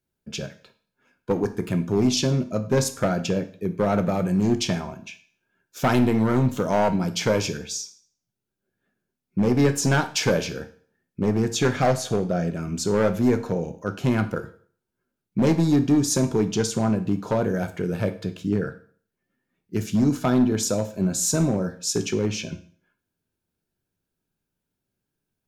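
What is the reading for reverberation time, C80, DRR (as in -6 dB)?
0.50 s, 18.0 dB, 8.5 dB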